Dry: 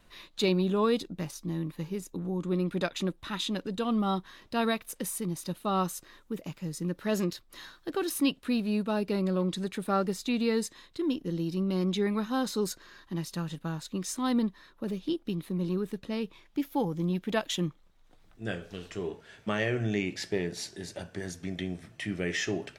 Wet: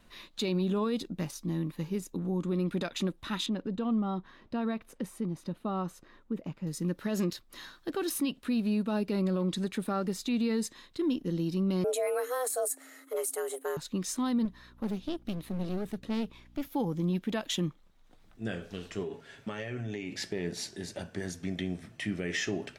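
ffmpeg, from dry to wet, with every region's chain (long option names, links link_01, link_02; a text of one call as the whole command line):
ffmpeg -i in.wav -filter_complex "[0:a]asettb=1/sr,asplit=3[link_01][link_02][link_03];[link_01]atrim=end=3.464[link_04];[link_02]atrim=start=3.46:end=6.67,asetpts=PTS-STARTPTS,afade=type=in:duration=0.004:curve=qsin,afade=type=out:start_time=3.206:duration=0.004:curve=qsin,lowpass=frequency=1300:poles=1,acompressor=threshold=-31dB:ratio=2.5:attack=3.2:release=140:knee=1:detection=peak[link_05];[link_03]atrim=start=6.666[link_06];[link_04][link_05]acrossfade=duration=0.004:curve1=hsin:curve2=qsin[link_07];[link_07][link_06]acrossfade=duration=0.004:curve1=qsin:curve2=hsin,asettb=1/sr,asplit=3[link_08][link_09][link_10];[link_08]atrim=end=11.844[link_11];[link_09]atrim=start=11.84:end=13.77,asetpts=PTS-STARTPTS,afade=type=in:duration=0.004:curve=qsin,afade=type=out:start_time=1.926:duration=0.004:curve=qsin,highshelf=frequency=6400:width_type=q:width=3:gain=13,afreqshift=250[link_12];[link_10]atrim=start=13.766[link_13];[link_11][link_12]acrossfade=duration=0.004:curve1=hsin:curve2=qsin[link_14];[link_14][link_13]acrossfade=duration=0.004:curve1=qsin:curve2=hsin,asettb=1/sr,asplit=3[link_15][link_16][link_17];[link_15]atrim=end=14.454[link_18];[link_16]atrim=start=14.45:end=16.68,asetpts=PTS-STARTPTS,afade=type=in:duration=0.004:curve=qsin,afade=type=out:start_time=2.226:duration=0.004:curve=qsin,aeval=exprs='val(0)+0.00141*(sin(2*PI*60*n/s)+sin(2*PI*2*60*n/s)/2+sin(2*PI*3*60*n/s)/3+sin(2*PI*4*60*n/s)/4+sin(2*PI*5*60*n/s)/5)':channel_layout=same,aeval=exprs='clip(val(0),-1,0.0112)':channel_layout=same[link_19];[link_17]atrim=start=16.676[link_20];[link_18][link_19]acrossfade=duration=0.004:curve1=hsin:curve2=qsin[link_21];[link_21][link_20]acrossfade=duration=0.004:curve1=qsin:curve2=hsin,asettb=1/sr,asplit=3[link_22][link_23][link_24];[link_22]atrim=end=19.024[link_25];[link_23]atrim=start=19.02:end=20.12,asetpts=PTS-STARTPTS,afade=type=in:duration=0.004:curve=qsin,afade=type=out:start_time=1.096:duration=0.004:curve=qsin,aecho=1:1:7.3:0.45,atrim=end_sample=48510,acompressor=threshold=-33dB:ratio=10:attack=3.2:release=140:knee=1:detection=peak[link_26];[link_24]atrim=start=20.116[link_27];[link_25][link_26]acrossfade=duration=0.004:curve1=hsin:curve2=qsin[link_28];[link_28][link_27]acrossfade=duration=0.004:curve1=qsin:curve2=hsin,equalizer=frequency=230:width=4:gain=5,alimiter=limit=-22.5dB:level=0:latency=1:release=70" out.wav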